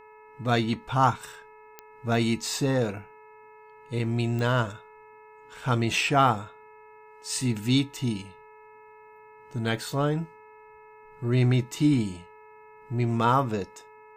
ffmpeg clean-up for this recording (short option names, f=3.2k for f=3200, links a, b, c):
-af "adeclick=t=4,bandreject=f=430.1:t=h:w=4,bandreject=f=860.2:t=h:w=4,bandreject=f=1.2903k:t=h:w=4,bandreject=f=1.7204k:t=h:w=4,bandreject=f=2.1505k:t=h:w=4,bandreject=f=2.5806k:t=h:w=4,bandreject=f=960:w=30"